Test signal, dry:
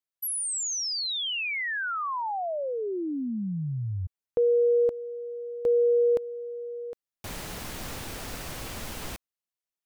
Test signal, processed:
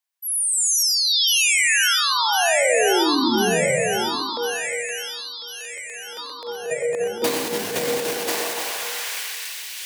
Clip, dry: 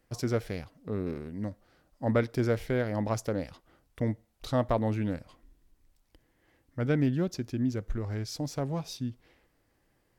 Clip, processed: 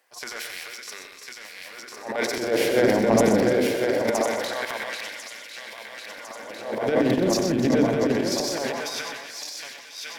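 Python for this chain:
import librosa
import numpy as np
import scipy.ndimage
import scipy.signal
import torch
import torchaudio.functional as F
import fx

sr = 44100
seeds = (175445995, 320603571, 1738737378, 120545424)

y = fx.reverse_delay_fb(x, sr, ms=525, feedback_pct=79, wet_db=-3)
y = scipy.signal.sosfilt(scipy.signal.butter(2, 97.0, 'highpass', fs=sr, output='sos'), y)
y = fx.notch(y, sr, hz=1300.0, q=8.0)
y = fx.dynamic_eq(y, sr, hz=1100.0, q=2.2, threshold_db=-43.0, ratio=4.0, max_db=-4)
y = fx.hum_notches(y, sr, base_hz=50, count=7)
y = fx.filter_lfo_highpass(y, sr, shape='sine', hz=0.23, low_hz=240.0, high_hz=2500.0, q=1.0)
y = fx.transient(y, sr, attack_db=-10, sustain_db=10)
y = fx.echo_multitap(y, sr, ms=(91, 125, 297), db=(-9.5, -8.5, -14.0))
y = y * 10.0 ** (8.0 / 20.0)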